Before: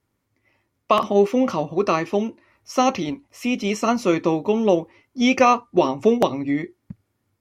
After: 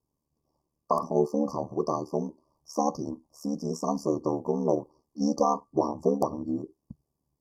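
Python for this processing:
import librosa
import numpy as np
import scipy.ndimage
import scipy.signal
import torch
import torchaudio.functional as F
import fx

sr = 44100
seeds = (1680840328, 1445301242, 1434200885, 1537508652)

y = x * np.sin(2.0 * np.pi * 37.0 * np.arange(len(x)) / sr)
y = fx.brickwall_bandstop(y, sr, low_hz=1200.0, high_hz=4400.0)
y = F.gain(torch.from_numpy(y), -5.0).numpy()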